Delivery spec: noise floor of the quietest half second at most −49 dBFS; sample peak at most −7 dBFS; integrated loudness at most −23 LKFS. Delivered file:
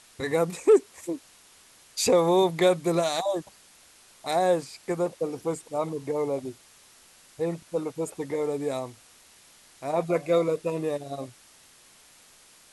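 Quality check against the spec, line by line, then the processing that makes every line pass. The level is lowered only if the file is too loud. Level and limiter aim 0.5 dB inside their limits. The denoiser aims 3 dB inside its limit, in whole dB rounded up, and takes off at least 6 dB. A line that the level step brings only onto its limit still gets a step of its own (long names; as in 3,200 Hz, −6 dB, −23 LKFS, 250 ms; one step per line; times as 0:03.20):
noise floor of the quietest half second −55 dBFS: in spec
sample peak −10.0 dBFS: in spec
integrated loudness −27.0 LKFS: in spec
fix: no processing needed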